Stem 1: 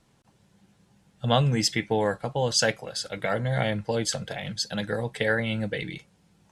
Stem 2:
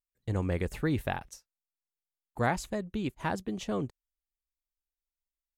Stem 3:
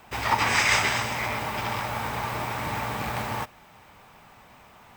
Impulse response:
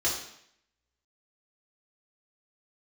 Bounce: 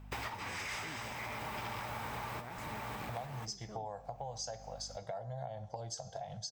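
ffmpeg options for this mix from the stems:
-filter_complex "[0:a]firequalizer=gain_entry='entry(110,0);entry(280,-18);entry(700,9);entry(1400,-11);entry(2300,-19);entry(5900,4);entry(9600,-15)':delay=0.05:min_phase=1,acompressor=threshold=0.0282:ratio=1.5,adelay=1850,volume=0.501,asplit=2[s0][s1];[s1]volume=0.0944[s2];[1:a]volume=0.158,asplit=2[s3][s4];[2:a]agate=range=0.178:threshold=0.00794:ratio=16:detection=peak,aeval=exprs='val(0)+0.00316*(sin(2*PI*50*n/s)+sin(2*PI*2*50*n/s)/2+sin(2*PI*3*50*n/s)/3+sin(2*PI*4*50*n/s)/4+sin(2*PI*5*50*n/s)/5)':c=same,asoftclip=type=tanh:threshold=0.112,volume=1.06[s5];[s4]apad=whole_len=219043[s6];[s5][s6]sidechaincompress=threshold=0.00316:ratio=12:attack=16:release=720[s7];[3:a]atrim=start_sample=2205[s8];[s2][s8]afir=irnorm=-1:irlink=0[s9];[s0][s3][s7][s9]amix=inputs=4:normalize=0,acompressor=threshold=0.0112:ratio=6"

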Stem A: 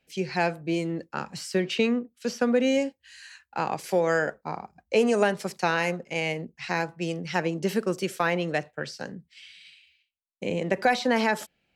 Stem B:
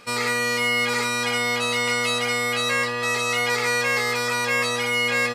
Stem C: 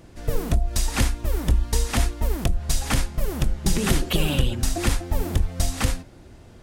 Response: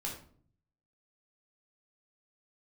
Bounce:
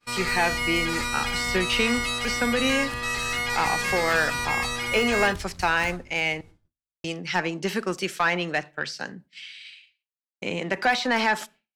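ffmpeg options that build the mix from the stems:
-filter_complex "[0:a]deesser=0.8,asplit=2[s0][s1];[s1]highpass=f=720:p=1,volume=3.98,asoftclip=type=tanh:threshold=0.316[s2];[s0][s2]amix=inputs=2:normalize=0,lowpass=f=4700:p=1,volume=0.501,volume=1.06,asplit=3[s3][s4][s5];[s3]atrim=end=6.41,asetpts=PTS-STARTPTS,afade=t=out:st=6.406:d=0.004:c=hsin[s6];[s4]atrim=start=6.41:end=7.04,asetpts=PTS-STARTPTS,volume=0[s7];[s5]atrim=start=7.04,asetpts=PTS-STARTPTS,afade=t=in:d=0.004:c=hsin[s8];[s6][s7][s8]concat=n=3:v=0:a=1,asplit=3[s9][s10][s11];[s10]volume=0.075[s12];[1:a]volume=0.631[s13];[2:a]acompressor=threshold=0.0398:ratio=6,volume=0.316,asplit=2[s14][s15];[s15]volume=0.473[s16];[s11]apad=whole_len=292034[s17];[s14][s17]sidechaingate=range=0.0224:threshold=0.00708:ratio=16:detection=peak[s18];[3:a]atrim=start_sample=2205[s19];[s12][s16]amix=inputs=2:normalize=0[s20];[s20][s19]afir=irnorm=-1:irlink=0[s21];[s9][s13][s18][s21]amix=inputs=4:normalize=0,equalizer=f=520:w=1.9:g=-7.5,agate=range=0.0224:threshold=0.00562:ratio=3:detection=peak"

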